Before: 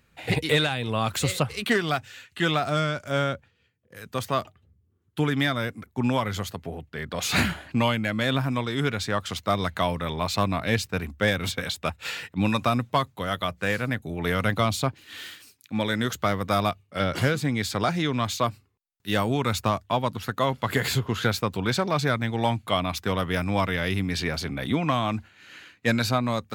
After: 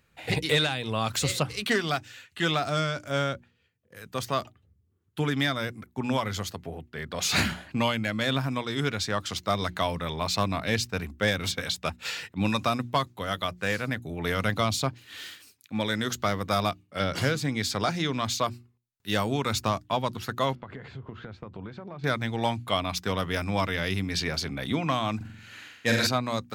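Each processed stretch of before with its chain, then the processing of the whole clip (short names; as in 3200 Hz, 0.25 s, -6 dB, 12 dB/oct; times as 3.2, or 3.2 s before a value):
20.55–22.04 compressor 10:1, threshold -30 dBFS + tape spacing loss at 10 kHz 40 dB
25.16–26.07 high shelf 5300 Hz +4 dB + flutter echo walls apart 7.7 m, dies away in 0.86 s
whole clip: notches 60/120/180/240/300/360 Hz; dynamic EQ 5400 Hz, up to +6 dB, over -46 dBFS, Q 1.3; gain -2.5 dB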